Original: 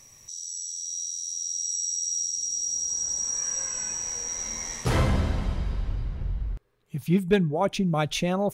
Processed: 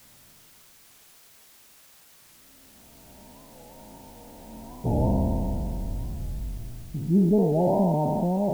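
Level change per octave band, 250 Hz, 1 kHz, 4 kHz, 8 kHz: +3.5, +0.5, −22.0, −27.0 decibels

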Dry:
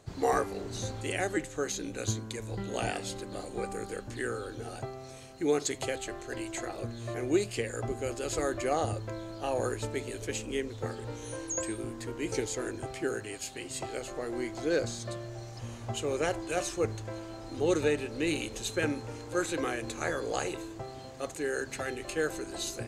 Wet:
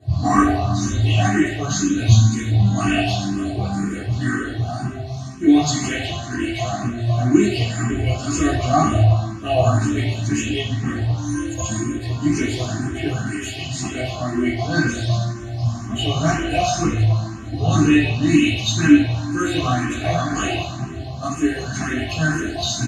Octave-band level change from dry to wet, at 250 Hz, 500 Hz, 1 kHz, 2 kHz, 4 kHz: +17.5, +5.5, +13.0, +12.0, +14.0 decibels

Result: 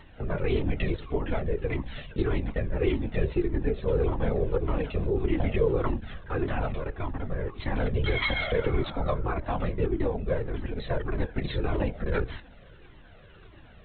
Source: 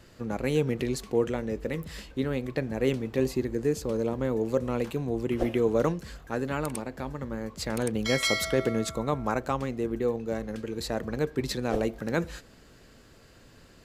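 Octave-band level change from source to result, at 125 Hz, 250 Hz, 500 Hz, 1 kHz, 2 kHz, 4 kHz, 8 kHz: +4.0 dB, −2.5 dB, −1.0 dB, −0.5 dB, +0.5 dB, −4.0 dB, below −40 dB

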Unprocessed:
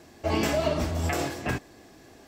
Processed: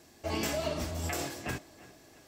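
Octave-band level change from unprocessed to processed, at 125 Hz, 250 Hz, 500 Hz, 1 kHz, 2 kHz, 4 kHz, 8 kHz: −8.0, −8.0, −7.5, −7.5, −6.0, −3.5, −1.0 decibels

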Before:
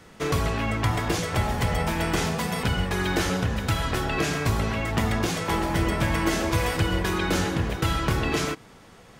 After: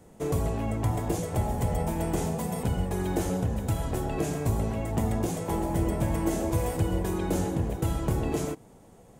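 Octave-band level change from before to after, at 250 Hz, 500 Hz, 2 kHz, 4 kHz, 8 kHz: −2.0, −2.0, −15.0, −14.5, −4.5 decibels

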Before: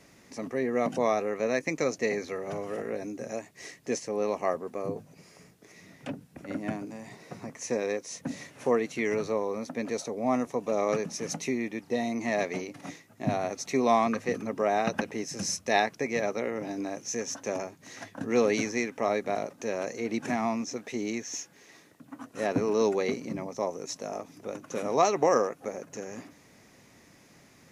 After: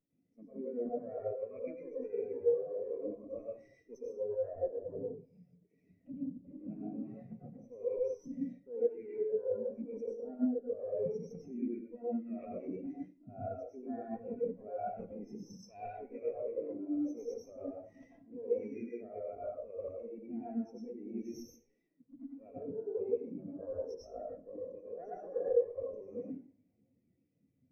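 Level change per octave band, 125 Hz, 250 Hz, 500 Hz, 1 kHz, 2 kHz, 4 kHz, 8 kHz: −12.5 dB, −8.5 dB, −7.5 dB, −18.0 dB, below −30 dB, below −25 dB, below −25 dB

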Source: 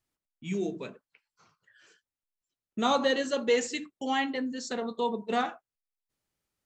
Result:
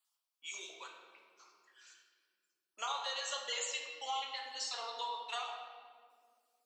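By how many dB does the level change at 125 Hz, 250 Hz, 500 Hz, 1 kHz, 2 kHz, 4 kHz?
can't be measured, below −35 dB, −19.5 dB, −8.5 dB, −9.0 dB, −2.5 dB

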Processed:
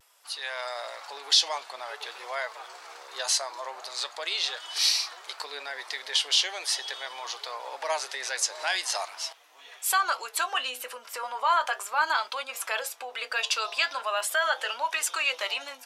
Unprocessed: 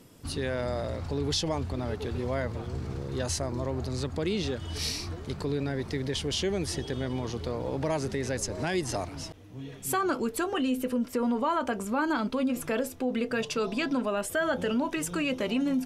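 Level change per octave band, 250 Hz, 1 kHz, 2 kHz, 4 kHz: below −30 dB, +5.0 dB, +6.5 dB, +9.5 dB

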